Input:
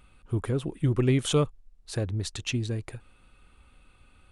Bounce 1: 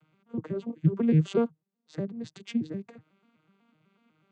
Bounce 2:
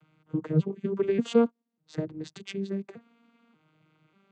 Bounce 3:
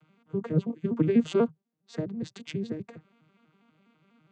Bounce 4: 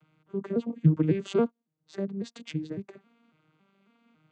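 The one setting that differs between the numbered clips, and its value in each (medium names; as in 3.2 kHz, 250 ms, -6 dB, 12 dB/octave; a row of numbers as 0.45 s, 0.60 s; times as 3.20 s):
vocoder on a broken chord, a note every: 124 ms, 589 ms, 82 ms, 276 ms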